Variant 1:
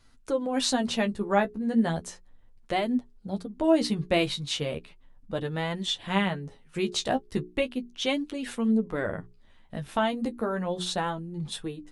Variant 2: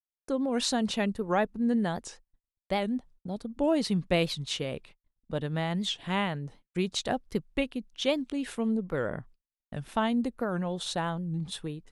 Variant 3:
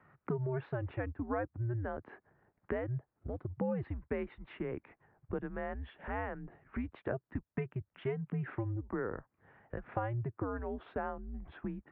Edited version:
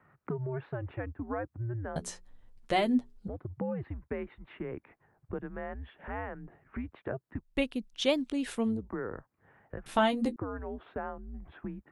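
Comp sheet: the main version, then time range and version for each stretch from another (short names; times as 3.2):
3
1.96–3.28 from 1
7.5–8.76 from 2, crossfade 0.24 s
9.86–10.36 from 1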